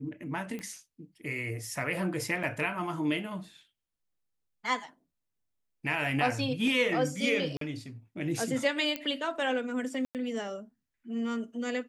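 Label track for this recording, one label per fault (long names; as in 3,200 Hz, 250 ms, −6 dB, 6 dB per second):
0.590000	0.590000	click −26 dBFS
2.430000	2.430000	drop-out 4.6 ms
7.570000	7.610000	drop-out 43 ms
8.960000	8.960000	click −17 dBFS
10.050000	10.150000	drop-out 98 ms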